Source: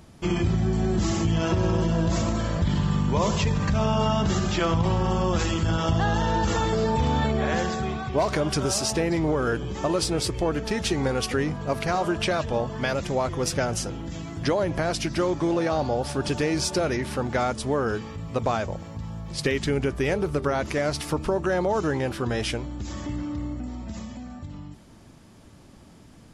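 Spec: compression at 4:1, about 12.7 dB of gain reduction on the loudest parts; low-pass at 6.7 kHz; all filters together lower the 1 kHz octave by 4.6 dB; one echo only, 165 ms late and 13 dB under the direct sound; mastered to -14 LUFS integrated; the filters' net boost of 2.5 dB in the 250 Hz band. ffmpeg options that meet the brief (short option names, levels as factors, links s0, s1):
-af "lowpass=6700,equalizer=f=250:t=o:g=4,equalizer=f=1000:t=o:g=-6.5,acompressor=threshold=0.02:ratio=4,aecho=1:1:165:0.224,volume=11.9"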